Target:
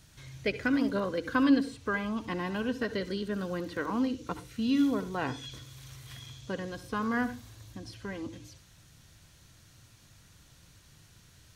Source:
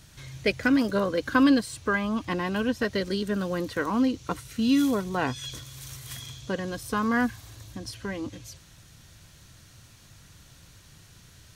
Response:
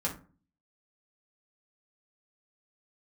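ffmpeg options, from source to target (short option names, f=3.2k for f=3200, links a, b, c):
-filter_complex "[0:a]acrossover=split=4900[a][b];[b]acompressor=threshold=-50dB:ratio=4:attack=1:release=60[c];[a][c]amix=inputs=2:normalize=0,asplit=2[d][e];[1:a]atrim=start_sample=2205,asetrate=74970,aresample=44100,adelay=64[f];[e][f]afir=irnorm=-1:irlink=0,volume=-14.5dB[g];[d][g]amix=inputs=2:normalize=0,volume=-5.5dB"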